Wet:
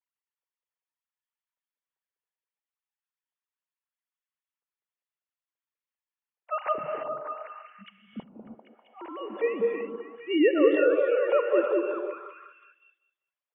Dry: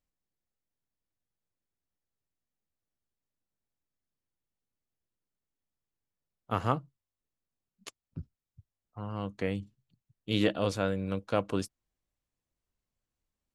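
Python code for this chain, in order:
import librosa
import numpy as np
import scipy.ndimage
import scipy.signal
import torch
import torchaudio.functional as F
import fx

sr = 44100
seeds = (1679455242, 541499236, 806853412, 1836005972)

y = fx.sine_speech(x, sr)
y = fx.echo_stepped(y, sr, ms=197, hz=440.0, octaves=0.7, feedback_pct=70, wet_db=-1)
y = fx.rev_gated(y, sr, seeds[0], gate_ms=360, shape='rising', drr_db=3.5)
y = y * librosa.db_to_amplitude(3.5)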